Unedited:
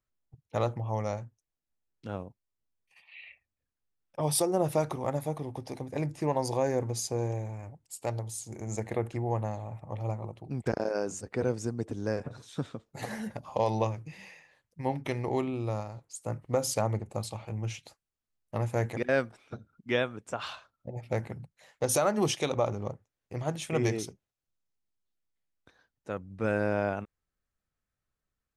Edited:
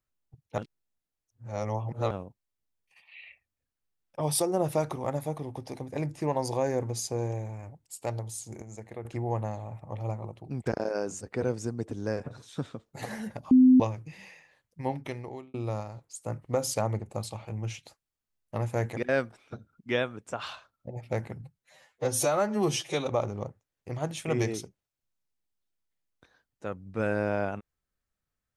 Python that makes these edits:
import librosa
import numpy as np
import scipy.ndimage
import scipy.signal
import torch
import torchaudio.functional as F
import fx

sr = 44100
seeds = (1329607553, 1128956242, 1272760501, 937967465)

y = fx.edit(x, sr, fx.reverse_span(start_s=0.58, length_s=1.53),
    fx.clip_gain(start_s=8.62, length_s=0.43, db=-9.5),
    fx.bleep(start_s=13.51, length_s=0.29, hz=256.0, db=-13.5),
    fx.fade_out_span(start_s=14.85, length_s=0.69),
    fx.stretch_span(start_s=21.41, length_s=1.11, factor=1.5), tone=tone)